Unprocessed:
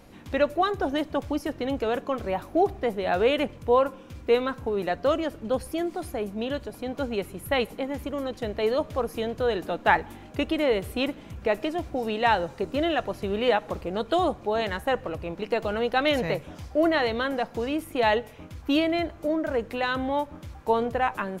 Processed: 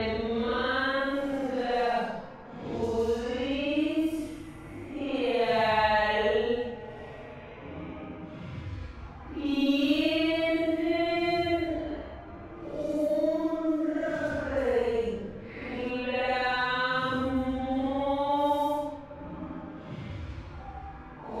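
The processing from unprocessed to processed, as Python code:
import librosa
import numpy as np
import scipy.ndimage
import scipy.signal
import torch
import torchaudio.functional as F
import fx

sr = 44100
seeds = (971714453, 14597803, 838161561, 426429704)

y = fx.paulstretch(x, sr, seeds[0], factor=6.0, window_s=0.1, from_s=17.1)
y = fx.env_lowpass(y, sr, base_hz=1800.0, full_db=-22.0)
y = fx.band_squash(y, sr, depth_pct=40)
y = F.gain(torch.from_numpy(y), -2.0).numpy()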